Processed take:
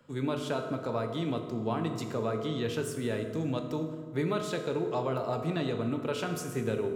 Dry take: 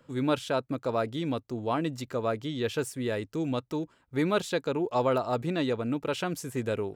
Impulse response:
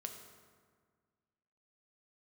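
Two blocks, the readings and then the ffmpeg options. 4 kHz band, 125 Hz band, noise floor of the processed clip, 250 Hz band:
-3.0 dB, +0.5 dB, -40 dBFS, -2.0 dB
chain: -filter_complex "[0:a]acrossover=split=160[s0][s1];[s1]acompressor=threshold=0.0398:ratio=6[s2];[s0][s2]amix=inputs=2:normalize=0[s3];[1:a]atrim=start_sample=2205[s4];[s3][s4]afir=irnorm=-1:irlink=0,volume=1.41"

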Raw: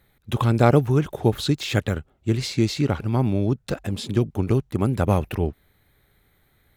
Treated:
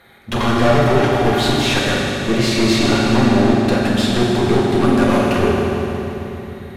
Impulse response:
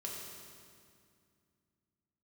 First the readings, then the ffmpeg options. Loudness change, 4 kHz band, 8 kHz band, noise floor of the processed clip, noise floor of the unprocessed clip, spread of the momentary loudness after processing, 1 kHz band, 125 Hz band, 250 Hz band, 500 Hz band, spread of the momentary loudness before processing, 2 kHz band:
+7.0 dB, +12.0 dB, +10.0 dB, -33 dBFS, -64 dBFS, 9 LU, +10.0 dB, +1.5 dB, +8.5 dB, +8.5 dB, 10 LU, +13.5 dB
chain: -filter_complex "[0:a]asplit=2[s0][s1];[s1]highpass=f=720:p=1,volume=35.5,asoftclip=type=tanh:threshold=0.75[s2];[s0][s2]amix=inputs=2:normalize=0,lowpass=f=1900:p=1,volume=0.501,aeval=exprs='clip(val(0),-1,0.1)':c=same[s3];[1:a]atrim=start_sample=2205,asetrate=26460,aresample=44100[s4];[s3][s4]afir=irnorm=-1:irlink=0,volume=0.75"

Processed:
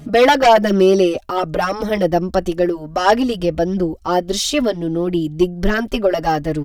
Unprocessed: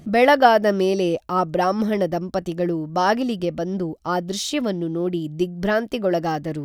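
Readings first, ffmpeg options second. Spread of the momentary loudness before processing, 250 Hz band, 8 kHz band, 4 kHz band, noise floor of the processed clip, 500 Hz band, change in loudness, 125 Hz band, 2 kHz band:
10 LU, +4.5 dB, +6.5 dB, +6.5 dB, -36 dBFS, +5.0 dB, +4.5 dB, +3.5 dB, +3.0 dB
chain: -filter_complex "[0:a]asubboost=boost=8.5:cutoff=55,aeval=exprs='0.841*(cos(1*acos(clip(val(0)/0.841,-1,1)))-cos(1*PI/2))+0.422*(cos(5*acos(clip(val(0)/0.841,-1,1)))-cos(5*PI/2))':c=same,asplit=2[s0][s1];[s1]adelay=4.4,afreqshift=0.63[s2];[s0][s2]amix=inputs=2:normalize=1,volume=0.891"

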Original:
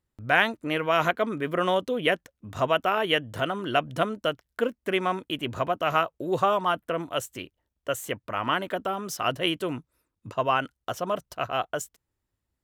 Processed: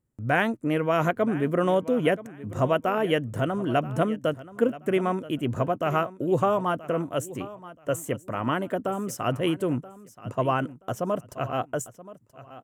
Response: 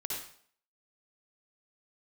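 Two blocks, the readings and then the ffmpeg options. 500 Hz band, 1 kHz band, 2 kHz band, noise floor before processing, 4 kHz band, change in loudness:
+2.0 dB, -2.0 dB, -4.0 dB, -84 dBFS, -8.0 dB, +0.5 dB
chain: -filter_complex "[0:a]equalizer=f=125:t=o:w=1:g=10,equalizer=f=250:t=o:w=1:g=7,equalizer=f=500:t=o:w=1:g=4,equalizer=f=4000:t=o:w=1:g=-10,equalizer=f=8000:t=o:w=1:g=6,asplit=2[s0][s1];[s1]aecho=0:1:978|1956:0.141|0.0325[s2];[s0][s2]amix=inputs=2:normalize=0,volume=0.708"

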